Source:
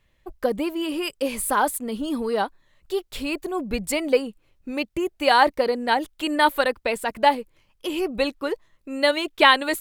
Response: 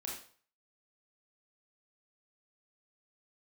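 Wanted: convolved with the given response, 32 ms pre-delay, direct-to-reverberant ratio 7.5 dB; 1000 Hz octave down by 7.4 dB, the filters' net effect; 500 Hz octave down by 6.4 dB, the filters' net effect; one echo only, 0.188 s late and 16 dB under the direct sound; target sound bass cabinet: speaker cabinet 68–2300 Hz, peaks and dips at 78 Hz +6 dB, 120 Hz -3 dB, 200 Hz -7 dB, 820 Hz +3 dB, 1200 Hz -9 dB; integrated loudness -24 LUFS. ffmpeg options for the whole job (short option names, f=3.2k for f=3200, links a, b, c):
-filter_complex "[0:a]equalizer=f=500:t=o:g=-5.5,equalizer=f=1k:t=o:g=-7.5,aecho=1:1:188:0.158,asplit=2[a][b];[1:a]atrim=start_sample=2205,adelay=32[c];[b][c]afir=irnorm=-1:irlink=0,volume=-7dB[d];[a][d]amix=inputs=2:normalize=0,highpass=f=68:w=0.5412,highpass=f=68:w=1.3066,equalizer=f=78:t=q:w=4:g=6,equalizer=f=120:t=q:w=4:g=-3,equalizer=f=200:t=q:w=4:g=-7,equalizer=f=820:t=q:w=4:g=3,equalizer=f=1.2k:t=q:w=4:g=-9,lowpass=f=2.3k:w=0.5412,lowpass=f=2.3k:w=1.3066,volume=5dB"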